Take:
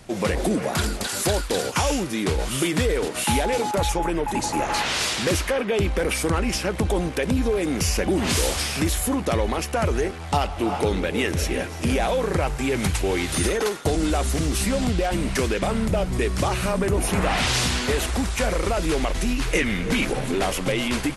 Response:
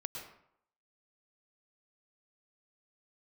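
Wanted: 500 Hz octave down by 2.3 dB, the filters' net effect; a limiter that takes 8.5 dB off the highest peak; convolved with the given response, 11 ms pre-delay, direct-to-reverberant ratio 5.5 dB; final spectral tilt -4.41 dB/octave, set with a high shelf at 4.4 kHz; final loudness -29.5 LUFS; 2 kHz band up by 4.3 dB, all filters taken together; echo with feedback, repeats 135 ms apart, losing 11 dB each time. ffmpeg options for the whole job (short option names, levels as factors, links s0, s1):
-filter_complex "[0:a]equalizer=f=500:t=o:g=-3,equalizer=f=2000:t=o:g=6.5,highshelf=f=4400:g=-5,alimiter=limit=0.188:level=0:latency=1,aecho=1:1:135|270|405:0.282|0.0789|0.0221,asplit=2[s0][s1];[1:a]atrim=start_sample=2205,adelay=11[s2];[s1][s2]afir=irnorm=-1:irlink=0,volume=0.562[s3];[s0][s3]amix=inputs=2:normalize=0,volume=0.501"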